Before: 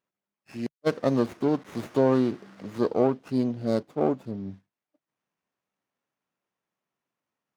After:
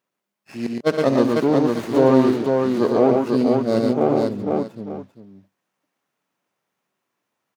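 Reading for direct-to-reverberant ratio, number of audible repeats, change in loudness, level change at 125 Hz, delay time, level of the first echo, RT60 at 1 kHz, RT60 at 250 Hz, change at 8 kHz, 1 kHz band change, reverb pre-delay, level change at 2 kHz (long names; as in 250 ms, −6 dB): no reverb audible, 5, +8.0 dB, +6.0 dB, 68 ms, −12.0 dB, no reverb audible, no reverb audible, can't be measured, +9.0 dB, no reverb audible, +9.0 dB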